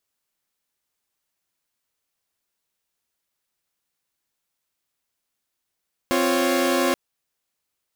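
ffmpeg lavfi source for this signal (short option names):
-f lavfi -i "aevalsrc='0.0944*((2*mod(261.63*t,1)-1)+(2*mod(349.23*t,1)-1)+(2*mod(554.37*t,1)-1))':d=0.83:s=44100"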